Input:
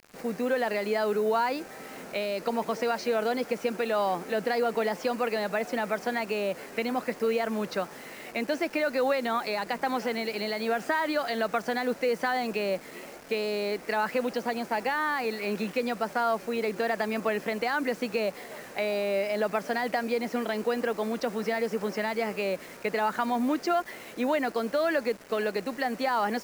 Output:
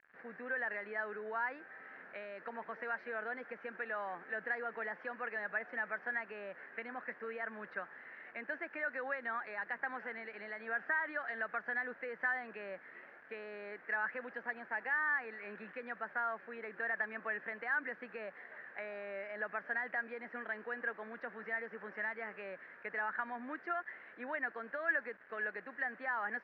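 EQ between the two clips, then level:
resonant band-pass 1,700 Hz, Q 6.2
high-frequency loss of the air 240 metres
spectral tilt −3.5 dB per octave
+5.5 dB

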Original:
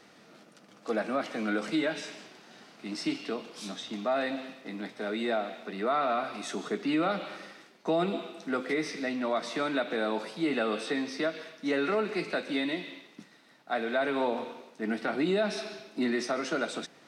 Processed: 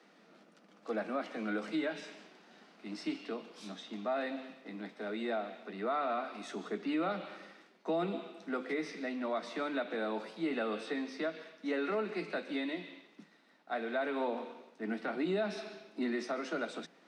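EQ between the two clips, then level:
Butterworth high-pass 160 Hz 96 dB per octave
high-shelf EQ 5,600 Hz −10.5 dB
−5.5 dB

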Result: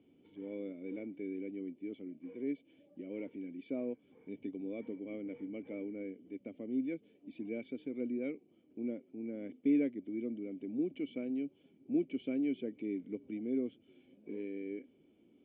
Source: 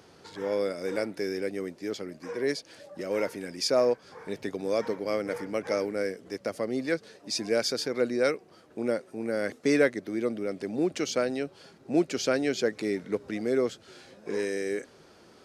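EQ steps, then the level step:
formant resonators in series i
parametric band 690 Hz +8 dB 2.2 octaves
−4.0 dB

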